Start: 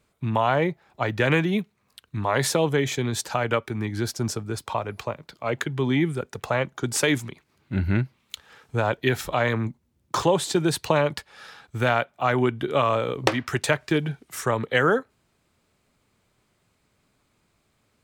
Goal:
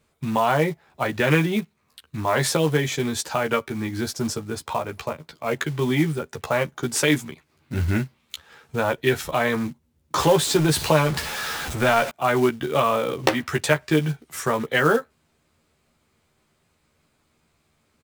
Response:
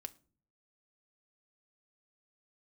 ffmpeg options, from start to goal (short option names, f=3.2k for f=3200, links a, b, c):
-filter_complex "[0:a]asettb=1/sr,asplit=3[a][b][c];[a]atrim=end=10.184[d];[b]atrim=start=10.18:end=12.1,asetpts=PTS-STARTPTS,afade=t=in:d=0.004:c=qsin,afade=t=out:st=1.916:d=0.004:c=qsin,aeval=exprs='val(0)+0.5*0.0501*sgn(val(0))':c=same[e];[c]atrim=start=12.096[f];[d][e]acrossfade=d=0.004:c1=hsin:c2=qsin[g];[g][f]acrossfade=d=0.004:c1=qsin:c2=hsin,asplit=2[h][i];[i]adelay=13,volume=-4dB[j];[h][j]amix=inputs=2:normalize=0,acrusher=bits=5:mode=log:mix=0:aa=0.000001"